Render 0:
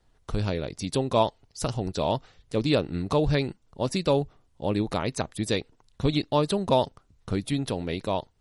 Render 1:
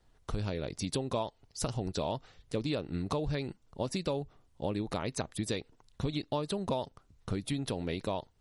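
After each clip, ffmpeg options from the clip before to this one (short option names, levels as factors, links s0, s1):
-af "acompressor=threshold=0.0398:ratio=6,volume=0.841"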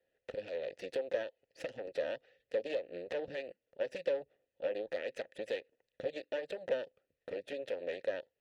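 -filter_complex "[0:a]aeval=exprs='0.119*(cos(1*acos(clip(val(0)/0.119,-1,1)))-cos(1*PI/2))+0.00944*(cos(3*acos(clip(val(0)/0.119,-1,1)))-cos(3*PI/2))+0.0299*(cos(6*acos(clip(val(0)/0.119,-1,1)))-cos(6*PI/2))':c=same,asplit=3[s0][s1][s2];[s0]bandpass=f=530:t=q:w=8,volume=1[s3];[s1]bandpass=f=1840:t=q:w=8,volume=0.501[s4];[s2]bandpass=f=2480:t=q:w=8,volume=0.355[s5];[s3][s4][s5]amix=inputs=3:normalize=0,volume=2.11"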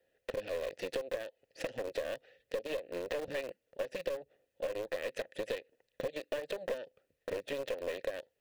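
-filter_complex "[0:a]acompressor=threshold=0.0112:ratio=16,asplit=2[s0][s1];[s1]acrusher=bits=4:dc=4:mix=0:aa=0.000001,volume=0.355[s2];[s0][s2]amix=inputs=2:normalize=0,volume=1.78"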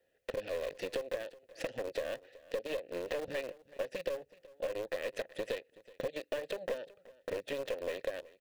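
-af "aecho=1:1:375:0.0944"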